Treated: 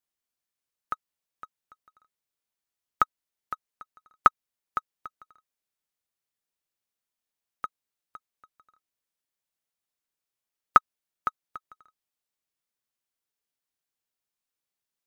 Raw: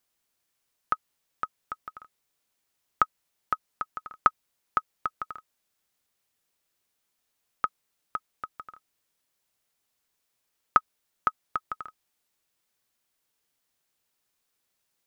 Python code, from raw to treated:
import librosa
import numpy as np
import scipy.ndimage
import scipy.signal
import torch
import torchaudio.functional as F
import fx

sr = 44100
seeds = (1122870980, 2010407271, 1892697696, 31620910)

y = fx.law_mismatch(x, sr, coded='mu')
y = fx.upward_expand(y, sr, threshold_db=-33.0, expansion=2.5)
y = F.gain(torch.from_numpy(y), 3.5).numpy()